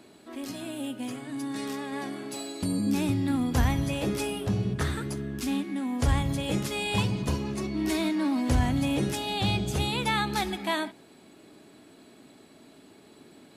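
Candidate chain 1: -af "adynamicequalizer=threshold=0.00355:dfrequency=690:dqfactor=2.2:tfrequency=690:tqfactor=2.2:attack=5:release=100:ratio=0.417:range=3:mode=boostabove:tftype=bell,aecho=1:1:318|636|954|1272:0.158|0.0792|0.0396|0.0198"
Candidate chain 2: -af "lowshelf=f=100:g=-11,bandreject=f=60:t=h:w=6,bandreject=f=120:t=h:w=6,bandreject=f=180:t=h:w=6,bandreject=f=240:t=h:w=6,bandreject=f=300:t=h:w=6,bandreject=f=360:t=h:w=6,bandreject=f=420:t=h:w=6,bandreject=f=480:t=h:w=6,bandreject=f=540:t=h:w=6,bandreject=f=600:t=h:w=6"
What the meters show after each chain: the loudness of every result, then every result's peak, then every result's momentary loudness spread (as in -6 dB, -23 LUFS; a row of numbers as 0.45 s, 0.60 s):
-28.0 LUFS, -31.0 LUFS; -12.5 dBFS, -14.0 dBFS; 10 LU, 9 LU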